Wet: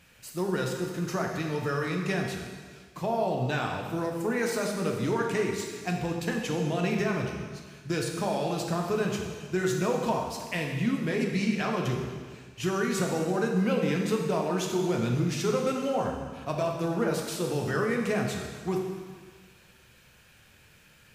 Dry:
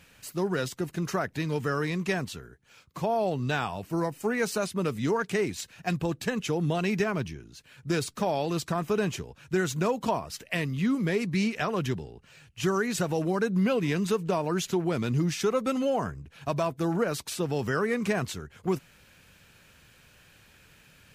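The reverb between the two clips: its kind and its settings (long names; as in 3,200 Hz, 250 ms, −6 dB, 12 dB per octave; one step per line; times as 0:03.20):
dense smooth reverb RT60 1.6 s, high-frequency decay 1×, pre-delay 0 ms, DRR 0.5 dB
level −3 dB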